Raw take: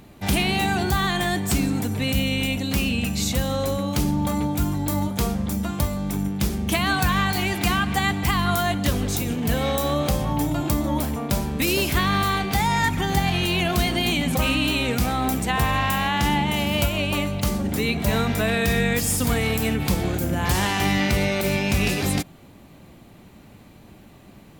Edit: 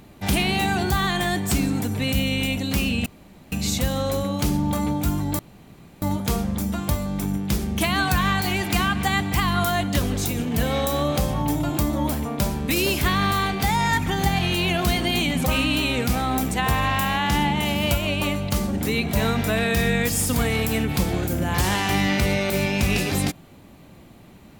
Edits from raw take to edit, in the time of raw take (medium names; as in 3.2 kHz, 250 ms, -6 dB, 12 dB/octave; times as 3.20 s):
3.06 s: insert room tone 0.46 s
4.93 s: insert room tone 0.63 s